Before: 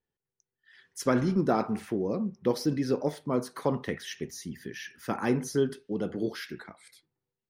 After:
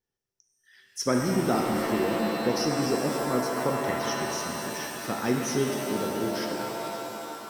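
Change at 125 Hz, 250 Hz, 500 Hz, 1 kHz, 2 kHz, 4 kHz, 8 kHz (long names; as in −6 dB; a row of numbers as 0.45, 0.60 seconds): +0.5, +1.5, +2.5, +6.0, +6.5, +8.5, +9.0 decibels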